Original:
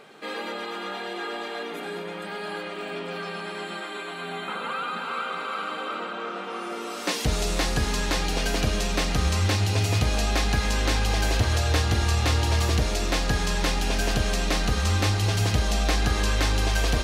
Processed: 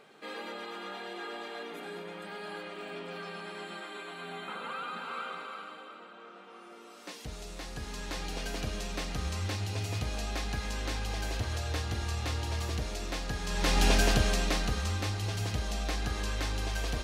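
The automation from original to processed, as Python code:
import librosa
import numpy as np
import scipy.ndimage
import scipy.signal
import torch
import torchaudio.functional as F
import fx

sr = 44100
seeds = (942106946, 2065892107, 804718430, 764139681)

y = fx.gain(x, sr, db=fx.line((5.27, -8.0), (5.96, -17.5), (7.58, -17.5), (8.26, -11.0), (13.42, -11.0), (13.84, 2.0), (14.99, -10.0)))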